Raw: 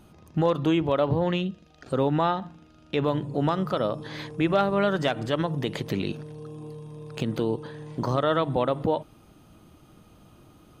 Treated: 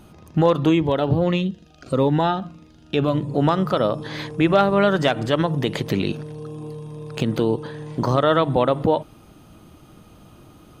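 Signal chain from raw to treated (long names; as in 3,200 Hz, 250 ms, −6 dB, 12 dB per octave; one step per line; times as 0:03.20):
0:00.69–0:03.28: phaser whose notches keep moving one way falling 1.6 Hz
level +6 dB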